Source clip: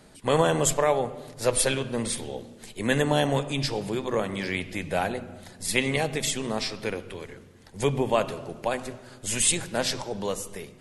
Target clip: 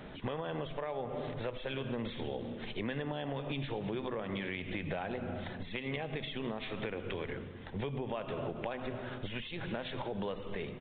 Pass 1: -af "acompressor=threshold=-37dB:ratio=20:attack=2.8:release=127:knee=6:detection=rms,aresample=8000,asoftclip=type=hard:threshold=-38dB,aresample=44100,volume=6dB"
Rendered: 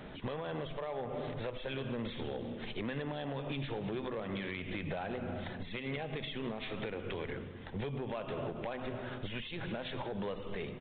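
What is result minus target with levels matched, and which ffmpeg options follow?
hard clip: distortion +34 dB
-af "acompressor=threshold=-37dB:ratio=20:attack=2.8:release=127:knee=6:detection=rms,aresample=8000,asoftclip=type=hard:threshold=-29.5dB,aresample=44100,volume=6dB"

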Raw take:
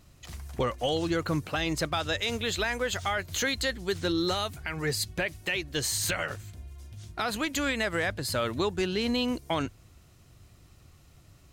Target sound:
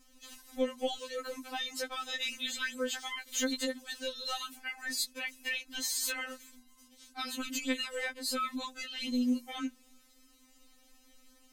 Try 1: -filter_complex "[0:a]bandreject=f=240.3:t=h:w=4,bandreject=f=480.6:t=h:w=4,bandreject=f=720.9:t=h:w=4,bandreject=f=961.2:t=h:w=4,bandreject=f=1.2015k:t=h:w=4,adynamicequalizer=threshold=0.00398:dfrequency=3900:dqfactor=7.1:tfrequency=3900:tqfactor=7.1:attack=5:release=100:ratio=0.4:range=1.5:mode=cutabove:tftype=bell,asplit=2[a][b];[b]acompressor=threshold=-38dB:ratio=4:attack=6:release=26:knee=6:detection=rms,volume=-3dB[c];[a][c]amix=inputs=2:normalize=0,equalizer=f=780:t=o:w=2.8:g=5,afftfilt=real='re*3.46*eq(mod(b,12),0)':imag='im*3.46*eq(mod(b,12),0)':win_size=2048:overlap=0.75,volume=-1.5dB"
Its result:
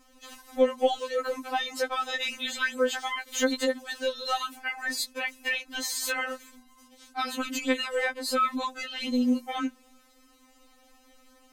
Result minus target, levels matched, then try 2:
compressor: peak gain reduction -5 dB; 1000 Hz band +4.5 dB
-filter_complex "[0:a]bandreject=f=240.3:t=h:w=4,bandreject=f=480.6:t=h:w=4,bandreject=f=720.9:t=h:w=4,bandreject=f=961.2:t=h:w=4,bandreject=f=1.2015k:t=h:w=4,adynamicequalizer=threshold=0.00398:dfrequency=3900:dqfactor=7.1:tfrequency=3900:tqfactor=7.1:attack=5:release=100:ratio=0.4:range=1.5:mode=cutabove:tftype=bell,asplit=2[a][b];[b]acompressor=threshold=-44.5dB:ratio=4:attack=6:release=26:knee=6:detection=rms,volume=-3dB[c];[a][c]amix=inputs=2:normalize=0,equalizer=f=780:t=o:w=2.8:g=-6,afftfilt=real='re*3.46*eq(mod(b,12),0)':imag='im*3.46*eq(mod(b,12),0)':win_size=2048:overlap=0.75,volume=-1.5dB"

